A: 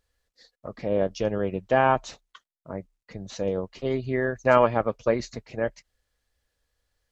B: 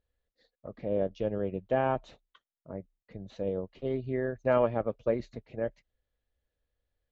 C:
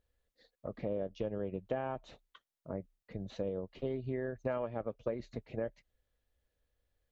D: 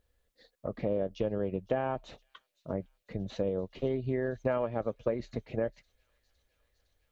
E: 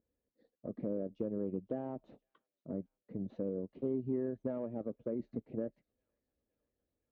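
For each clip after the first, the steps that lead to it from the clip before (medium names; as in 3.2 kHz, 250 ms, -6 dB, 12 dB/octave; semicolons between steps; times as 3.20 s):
FFT filter 590 Hz 0 dB, 1 kHz -7 dB, 3.7 kHz -6 dB, 5.3 kHz -18 dB; trim -5 dB
compression 6:1, threshold -35 dBFS, peak gain reduction 14 dB; trim +2 dB
feedback echo behind a high-pass 509 ms, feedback 78%, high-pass 4.7 kHz, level -17 dB; trim +5.5 dB
in parallel at -10 dB: sine folder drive 8 dB, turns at -15 dBFS; on the sum: band-pass filter 260 Hz, Q 1.7; trim -5.5 dB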